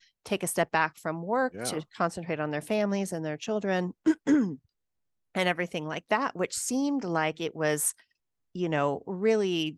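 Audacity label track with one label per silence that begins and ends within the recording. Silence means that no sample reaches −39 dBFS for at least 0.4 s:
4.550000	5.350000	silence
7.910000	8.550000	silence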